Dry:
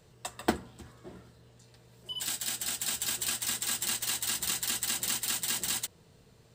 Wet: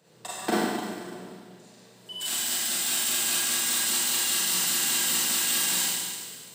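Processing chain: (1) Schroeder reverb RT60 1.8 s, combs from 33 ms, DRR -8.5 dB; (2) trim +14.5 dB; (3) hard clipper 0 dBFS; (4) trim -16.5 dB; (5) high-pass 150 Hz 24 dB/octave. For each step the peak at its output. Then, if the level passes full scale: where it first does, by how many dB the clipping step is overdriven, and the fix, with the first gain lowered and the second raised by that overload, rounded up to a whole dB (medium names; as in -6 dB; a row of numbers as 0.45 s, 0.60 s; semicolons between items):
-9.0 dBFS, +5.5 dBFS, 0.0 dBFS, -16.5 dBFS, -12.0 dBFS; step 2, 5.5 dB; step 2 +8.5 dB, step 4 -10.5 dB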